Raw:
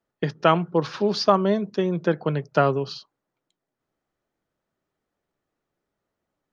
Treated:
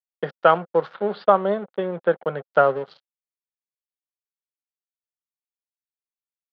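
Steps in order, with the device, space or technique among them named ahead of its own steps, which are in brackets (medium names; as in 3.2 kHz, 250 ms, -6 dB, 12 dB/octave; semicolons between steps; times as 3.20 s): blown loudspeaker (crossover distortion -36.5 dBFS; cabinet simulation 220–3600 Hz, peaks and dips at 300 Hz -8 dB, 530 Hz +8 dB, 780 Hz +5 dB, 1.4 kHz +7 dB, 2.5 kHz -7 dB); 0.94–2.52 s: steep low-pass 4 kHz 36 dB/octave; trim -1 dB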